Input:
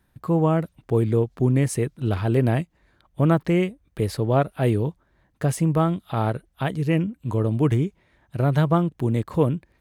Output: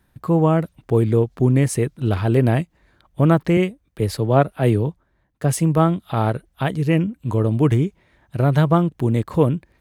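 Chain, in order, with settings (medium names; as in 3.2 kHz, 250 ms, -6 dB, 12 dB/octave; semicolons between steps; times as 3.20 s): 3.57–6.02 s: three bands expanded up and down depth 40%; trim +3.5 dB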